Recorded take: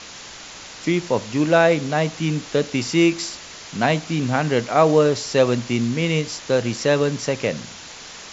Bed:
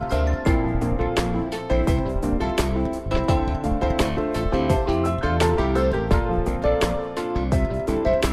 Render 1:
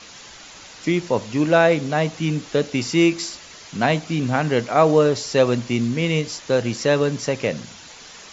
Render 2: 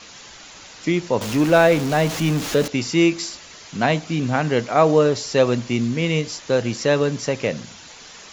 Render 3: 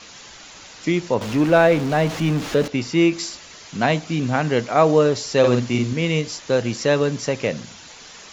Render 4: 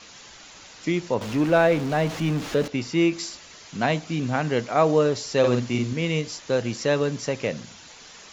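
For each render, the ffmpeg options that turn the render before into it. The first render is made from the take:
-af "afftdn=nr=6:nf=-39"
-filter_complex "[0:a]asettb=1/sr,asplit=3[a][b][c];[a]atrim=end=1.214[d];[b]atrim=start=1.21:end=2.68,asetpts=PTS-STARTPTS,afade=t=in:d=0.004:c=qsin,afade=t=out:st=1.466:d=0.004:c=qsin,aeval=exprs='val(0)+0.5*0.0631*sgn(val(0))':c=same[e];[c]atrim=start=2.676[f];[d][e]acrossfade=d=0.004:c1=hsin:c2=qsin[g];[g][f]acrossfade=d=0.004:c1=qsin:c2=hsin"
-filter_complex "[0:a]asettb=1/sr,asplit=3[a][b][c];[a]atrim=end=1.144[d];[b]atrim=start=1.14:end=3.13,asetpts=PTS-STARTPTS,afade=t=in:d=0.004:c=qsin,afade=t=out:st=1.986:d=0.004:c=qsin,lowpass=f=3.5k:p=1[e];[c]atrim=start=3.126[f];[d][e]acrossfade=d=0.004:c1=hsin:c2=qsin[g];[g][f]acrossfade=d=0.004:c1=qsin:c2=hsin,asettb=1/sr,asplit=3[h][i][j];[h]atrim=end=5.394[k];[i]atrim=start=5.39:end=5.93,asetpts=PTS-STARTPTS,afade=t=in:d=0.004:c=qsin,afade=t=out:st=0.536:d=0.004:c=qsin,asplit=2[l][m];[m]adelay=49,volume=-4dB[n];[l][n]amix=inputs=2:normalize=0,atrim=end_sample=23814[o];[j]atrim=start=5.926[p];[k][o]acrossfade=d=0.004:c1=hsin:c2=qsin[q];[q][p]acrossfade=d=0.004:c1=qsin:c2=hsin"
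-af "volume=-4dB"

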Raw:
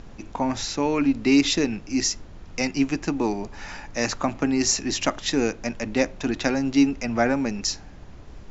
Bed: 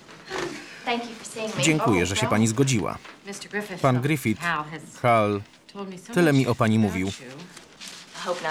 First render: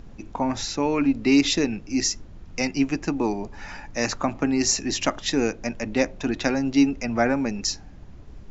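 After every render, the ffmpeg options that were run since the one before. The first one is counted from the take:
-af "afftdn=nr=6:nf=-43"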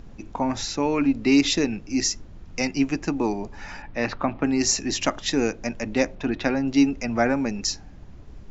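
-filter_complex "[0:a]asettb=1/sr,asplit=3[a][b][c];[a]atrim=end=3.824[d];[b]atrim=start=3.82:end=4.44,asetpts=PTS-STARTPTS,afade=t=in:d=0.004:c=qsin,afade=t=out:st=0.616:d=0.004:c=qsin,lowpass=f=3.8k:w=0.5412,lowpass=f=3.8k:w=1.3066[e];[c]atrim=start=4.436[f];[d][e]acrossfade=d=0.004:c1=hsin:c2=qsin[g];[g][f]acrossfade=d=0.004:c1=qsin:c2=hsin,asettb=1/sr,asplit=3[h][i][j];[h]atrim=end=6.154[k];[i]atrim=start=6.15:end=6.68,asetpts=PTS-STARTPTS,afade=t=in:d=0.004:c=qsin,afade=t=out:st=0.526:d=0.004:c=qsin,lowpass=3.8k[l];[j]atrim=start=6.676[m];[k][l]acrossfade=d=0.004:c1=hsin:c2=qsin[n];[n][m]acrossfade=d=0.004:c1=qsin:c2=hsin"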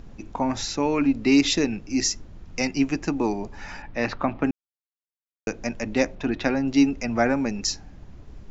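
-filter_complex "[0:a]asplit=3[a][b][c];[a]atrim=end=4.51,asetpts=PTS-STARTPTS,afade=t=out:st=4.506:d=0.004:c=hsin[d];[b]atrim=start=4.51:end=5.47,asetpts=PTS-STARTPTS,volume=0[e];[c]atrim=start=5.47,asetpts=PTS-STARTPTS,afade=t=in:d=0.004:c=hsin[f];[d][e][f]concat=n=3:v=0:a=1"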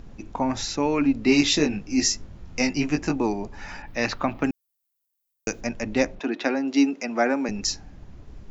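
-filter_complex "[0:a]asettb=1/sr,asplit=3[a][b][c];[a]atrim=end=1.264[d];[b]atrim=start=1.26:end=3.16,asetpts=PTS-STARTPTS,afade=t=in:d=0.004:c=qsin,afade=t=out:st=1.896:d=0.004:c=qsin,asplit=2[e][f];[f]adelay=20,volume=-3dB[g];[e][g]amix=inputs=2:normalize=0,atrim=end_sample=83790[h];[c]atrim=start=3.156[i];[d][h]acrossfade=d=0.004:c1=hsin:c2=qsin[j];[j][i]acrossfade=d=0.004:c1=qsin:c2=hsin,asplit=3[k][l][m];[k]afade=t=out:st=3.86:d=0.02[n];[l]aemphasis=mode=production:type=75fm,afade=t=in:st=3.86:d=0.02,afade=t=out:st=5.6:d=0.02[o];[m]afade=t=in:st=5.6:d=0.02[p];[n][o][p]amix=inputs=3:normalize=0,asettb=1/sr,asplit=3[q][r][s];[q]atrim=end=6.194[t];[r]atrim=start=6.19:end=7.49,asetpts=PTS-STARTPTS,afade=t=in:d=0.004:c=qsin,afade=t=out:st=1.296:d=0.004:c=qsin,highpass=f=240:w=0.5412,highpass=f=240:w=1.3066[u];[s]atrim=start=7.486[v];[t][u]acrossfade=d=0.004:c1=hsin:c2=qsin[w];[w][v]acrossfade=d=0.004:c1=qsin:c2=hsin"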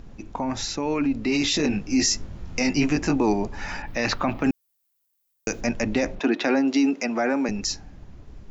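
-af "alimiter=limit=-17.5dB:level=0:latency=1:release=15,dynaudnorm=f=240:g=13:m=5.5dB"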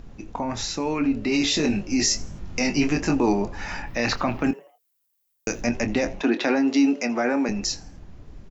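-filter_complex "[0:a]asplit=2[a][b];[b]adelay=25,volume=-10.5dB[c];[a][c]amix=inputs=2:normalize=0,asplit=4[d][e][f][g];[e]adelay=82,afreqshift=150,volume=-22.5dB[h];[f]adelay=164,afreqshift=300,volume=-30.9dB[i];[g]adelay=246,afreqshift=450,volume=-39.3dB[j];[d][h][i][j]amix=inputs=4:normalize=0"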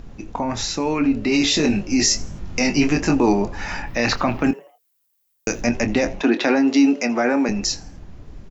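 -af "volume=4dB"

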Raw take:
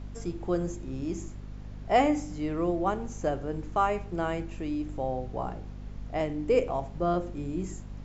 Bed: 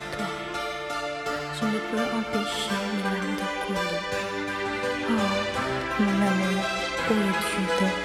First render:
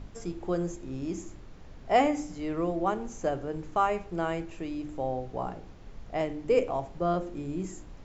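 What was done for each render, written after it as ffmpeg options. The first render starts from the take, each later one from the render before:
-af "bandreject=f=50:t=h:w=4,bandreject=f=100:t=h:w=4,bandreject=f=150:t=h:w=4,bandreject=f=200:t=h:w=4,bandreject=f=250:t=h:w=4,bandreject=f=300:t=h:w=4,bandreject=f=350:t=h:w=4"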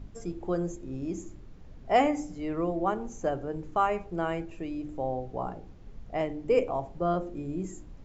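-af "afftdn=nr=7:nf=-48"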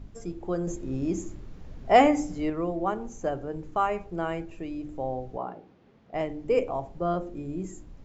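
-filter_complex "[0:a]asettb=1/sr,asplit=3[a][b][c];[a]atrim=end=0.674[d];[b]atrim=start=0.67:end=2.5,asetpts=PTS-STARTPTS,afade=t=in:d=0.004:c=qsin,afade=t=out:st=1.826:d=0.004:c=qsin,acontrast=39[e];[c]atrim=start=2.496[f];[d][e]acrossfade=d=0.004:c1=hsin:c2=qsin[g];[g][f]acrossfade=d=0.004:c1=qsin:c2=hsin,asettb=1/sr,asplit=3[h][i][j];[h]atrim=end=5.374[k];[i]atrim=start=5.37:end=6.14,asetpts=PTS-STARTPTS,afade=t=in:d=0.004:c=qsin,afade=t=out:st=0.766:d=0.004:c=qsin,highpass=210,lowpass=3.9k[l];[j]atrim=start=6.136[m];[k][l]acrossfade=d=0.004:c1=hsin:c2=qsin[n];[n][m]acrossfade=d=0.004:c1=qsin:c2=hsin"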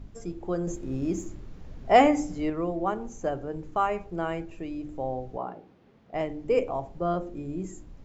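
-filter_complex "[0:a]asettb=1/sr,asplit=3[a][b][c];[a]atrim=end=0.754[d];[b]atrim=start=0.75:end=1.28,asetpts=PTS-STARTPTS,afade=t=in:d=0.004:c=qsin,afade=t=out:st=0.526:d=0.004:c=qsin,aeval=exprs='sgn(val(0))*max(abs(val(0))-0.00119,0)':c=same[e];[c]atrim=start=1.276[f];[d][e]acrossfade=d=0.004:c1=hsin:c2=qsin[g];[g][f]acrossfade=d=0.004:c1=qsin:c2=hsin"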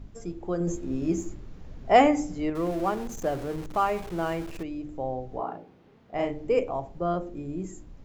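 -filter_complex "[0:a]asettb=1/sr,asplit=3[a][b][c];[a]atrim=end=0.594[d];[b]atrim=start=0.59:end=1.34,asetpts=PTS-STARTPTS,afade=t=in:d=0.004:c=qsin,afade=t=out:st=0.746:d=0.004:c=qsin,asplit=2[e][f];[f]adelay=12,volume=-4.5dB[g];[e][g]amix=inputs=2:normalize=0,atrim=end_sample=33075[h];[c]atrim=start=1.336[i];[d][h]acrossfade=d=0.004:c1=hsin:c2=qsin[j];[j][i]acrossfade=d=0.004:c1=qsin:c2=hsin,asettb=1/sr,asplit=3[k][l][m];[k]atrim=end=2.554[n];[l]atrim=start=2.55:end=4.63,asetpts=PTS-STARTPTS,afade=t=in:d=0.004:c=qsin,afade=t=out:st=2.076:d=0.004:c=qsin,aeval=exprs='val(0)+0.5*0.0141*sgn(val(0))':c=same[o];[m]atrim=start=4.626[p];[n][o]acrossfade=d=0.004:c1=hsin:c2=qsin[q];[q][p]acrossfade=d=0.004:c1=qsin:c2=hsin,asettb=1/sr,asplit=3[r][s][t];[r]atrim=end=5.284[u];[s]atrim=start=5.28:end=6.48,asetpts=PTS-STARTPTS,afade=t=in:d=0.004:c=qsin,afade=t=out:st=1.196:d=0.004:c=qsin,asplit=2[v][w];[w]adelay=35,volume=-2.5dB[x];[v][x]amix=inputs=2:normalize=0,atrim=end_sample=52920[y];[t]atrim=start=6.476[z];[u][y]acrossfade=d=0.004:c1=hsin:c2=qsin[aa];[aa][z]acrossfade=d=0.004:c1=qsin:c2=hsin"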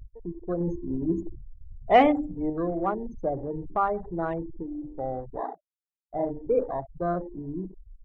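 -af "afftfilt=real='re*gte(hypot(re,im),0.0447)':imag='im*gte(hypot(re,im),0.0447)':win_size=1024:overlap=0.75,afwtdn=0.0126"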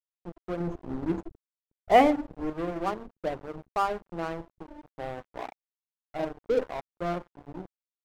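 -af "aeval=exprs='sgn(val(0))*max(abs(val(0))-0.02,0)':c=same"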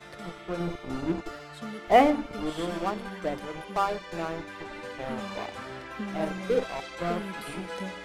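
-filter_complex "[1:a]volume=-12dB[a];[0:a][a]amix=inputs=2:normalize=0"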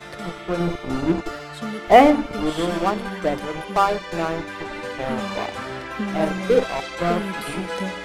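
-af "volume=8.5dB,alimiter=limit=-1dB:level=0:latency=1"

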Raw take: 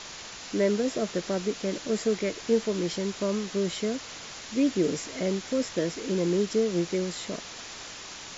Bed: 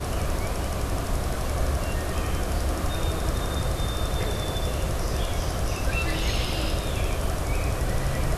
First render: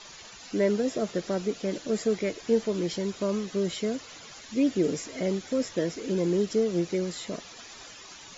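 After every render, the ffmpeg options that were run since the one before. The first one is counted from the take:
-af "afftdn=nr=11:nf=-42"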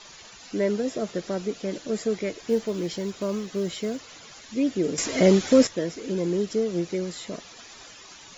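-filter_complex "[0:a]asettb=1/sr,asplit=3[a][b][c];[a]atrim=end=2.404[d];[b]atrim=start=2.4:end=4.02,asetpts=PTS-STARTPTS,afade=t=in:d=0.004:c=qsin,afade=t=out:st=1.616:d=0.004:c=qsin,acrusher=bits=9:mode=log:mix=0:aa=0.000001[e];[c]atrim=start=4.016[f];[d][e]acrossfade=d=0.004:c1=hsin:c2=qsin[g];[g][f]acrossfade=d=0.004:c1=qsin:c2=hsin,asplit=3[h][i][j];[h]atrim=end=4.982[k];[i]atrim=start=4.978:end=5.672,asetpts=PTS-STARTPTS,volume=11dB[l];[j]atrim=start=5.668[m];[k][l]acrossfade=d=0.004:c1=hsin:c2=hsin[n];[n][m]acrossfade=d=0.004:c1=hsin:c2=hsin"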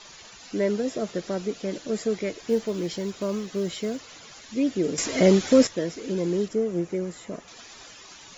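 -filter_complex "[0:a]asettb=1/sr,asplit=3[a][b][c];[a]atrim=end=6.484[d];[b]atrim=start=6.48:end=7.48,asetpts=PTS-STARTPTS,afade=t=in:d=0.004:c=qsin,afade=t=out:st=0.996:d=0.004:c=qsin,equalizer=f=4.2k:t=o:w=1.3:g=-11.5[e];[c]atrim=start=7.476[f];[d][e]acrossfade=d=0.004:c1=hsin:c2=qsin[g];[g][f]acrossfade=d=0.004:c1=qsin:c2=hsin"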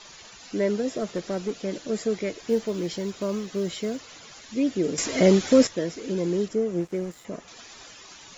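-filter_complex "[0:a]asettb=1/sr,asplit=3[a][b][c];[a]atrim=end=0.964[d];[b]atrim=start=0.96:end=1.6,asetpts=PTS-STARTPTS,afade=t=in:d=0.004:c=qsin,afade=t=out:st=0.636:d=0.004:c=qsin,asoftclip=type=hard:threshold=-20.5dB[e];[c]atrim=start=1.596[f];[d][e]acrossfade=d=0.004:c1=hsin:c2=qsin[g];[g][f]acrossfade=d=0.004:c1=qsin:c2=hsin,asettb=1/sr,asplit=3[h][i][j];[h]atrim=end=6.804[k];[i]atrim=start=6.8:end=7.25,asetpts=PTS-STARTPTS,afade=t=in:d=0.004:c=qsin,afade=t=out:st=0.446:d=0.004:c=qsin,aeval=exprs='sgn(val(0))*max(abs(val(0))-0.00398,0)':c=same[l];[j]atrim=start=7.246[m];[k][l]acrossfade=d=0.004:c1=hsin:c2=qsin[n];[n][m]acrossfade=d=0.004:c1=qsin:c2=hsin"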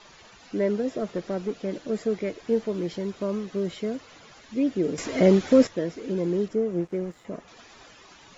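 -af "lowpass=f=2.1k:p=1"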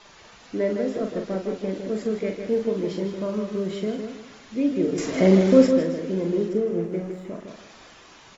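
-filter_complex "[0:a]asplit=2[a][b];[b]adelay=42,volume=-6dB[c];[a][c]amix=inputs=2:normalize=0,asplit=2[d][e];[e]adelay=158,lowpass=f=4.2k:p=1,volume=-6dB,asplit=2[f][g];[g]adelay=158,lowpass=f=4.2k:p=1,volume=0.32,asplit=2[h][i];[i]adelay=158,lowpass=f=4.2k:p=1,volume=0.32,asplit=2[j][k];[k]adelay=158,lowpass=f=4.2k:p=1,volume=0.32[l];[f][h][j][l]amix=inputs=4:normalize=0[m];[d][m]amix=inputs=2:normalize=0"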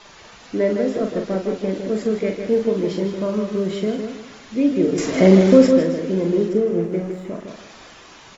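-af "volume=5dB,alimiter=limit=-1dB:level=0:latency=1"

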